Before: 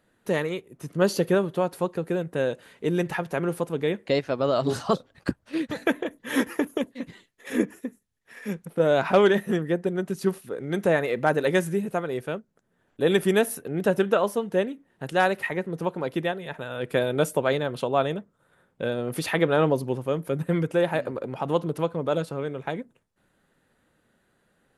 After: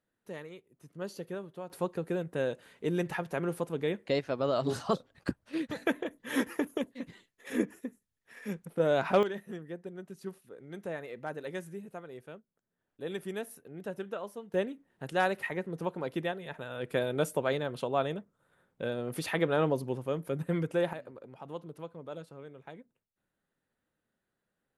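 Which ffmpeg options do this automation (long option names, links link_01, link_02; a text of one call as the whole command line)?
ffmpeg -i in.wav -af "asetnsamples=nb_out_samples=441:pad=0,asendcmd='1.7 volume volume -6dB;9.23 volume volume -16.5dB;14.54 volume volume -6.5dB;20.93 volume volume -17dB',volume=-17.5dB" out.wav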